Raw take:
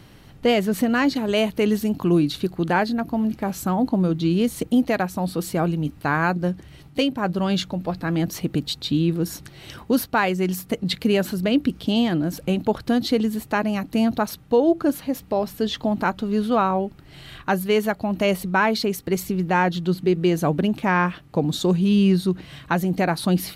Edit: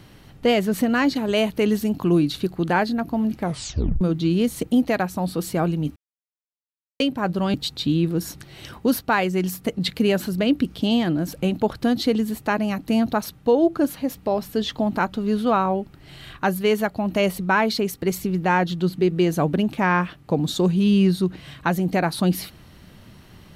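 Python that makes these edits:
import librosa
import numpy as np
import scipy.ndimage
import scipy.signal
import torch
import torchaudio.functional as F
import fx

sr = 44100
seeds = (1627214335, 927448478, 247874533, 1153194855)

y = fx.edit(x, sr, fx.tape_stop(start_s=3.41, length_s=0.6),
    fx.silence(start_s=5.96, length_s=1.04),
    fx.cut(start_s=7.54, length_s=1.05), tone=tone)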